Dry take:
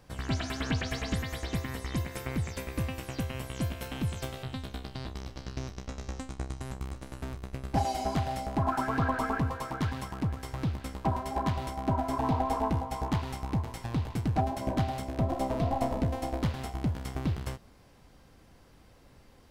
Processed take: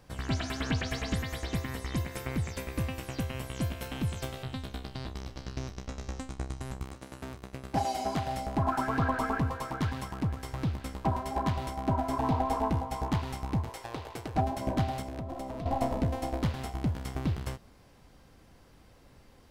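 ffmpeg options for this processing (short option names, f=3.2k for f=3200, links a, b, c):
-filter_complex "[0:a]asettb=1/sr,asplit=3[a][b][c];[a]atrim=end=6.834[d];[b]atrim=start=6.83:end=8.27,asetpts=PTS-STARTPTS,afade=t=in:d=0.004:c=qsin,afade=t=out:st=1.436:d=0.004:c=qsin,highpass=f=150:p=1[e];[c]atrim=start=8.266[f];[d][e]acrossfade=d=0.004:c1=hsin:c2=qsin[g];[g][f]acrossfade=d=0.004:c1=qsin:c2=hsin,asettb=1/sr,asplit=3[h][i][j];[h]atrim=end=13.694[k];[i]atrim=start=13.69:end=14.35,asetpts=PTS-STARTPTS,afade=t=in:d=0.004:c=qsin,afade=t=out:st=0.656:d=0.004:c=qsin,lowshelf=f=300:t=q:w=1.5:g=-12[l];[j]atrim=start=14.346[m];[k][l]acrossfade=d=0.004:c1=hsin:c2=qsin[n];[n][m]acrossfade=d=0.004:c1=qsin:c2=hsin,asettb=1/sr,asplit=3[o][p][q];[o]atrim=end=15.014[r];[p]atrim=start=15.01:end=15.66,asetpts=PTS-STARTPTS,afade=t=in:d=0.004:c=qsin,afade=t=out:st=0.646:d=0.004:c=qsin,acompressor=threshold=-34dB:ratio=6:attack=3.2:release=140:knee=1:detection=peak[s];[q]atrim=start=15.656[t];[r][s]acrossfade=d=0.004:c1=hsin:c2=qsin[u];[u][t]acrossfade=d=0.004:c1=qsin:c2=hsin"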